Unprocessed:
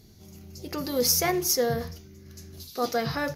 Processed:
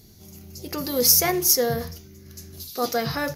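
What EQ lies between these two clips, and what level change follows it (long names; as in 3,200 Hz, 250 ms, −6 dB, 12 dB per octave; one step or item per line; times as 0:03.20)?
high-shelf EQ 7,700 Hz +9 dB
+2.0 dB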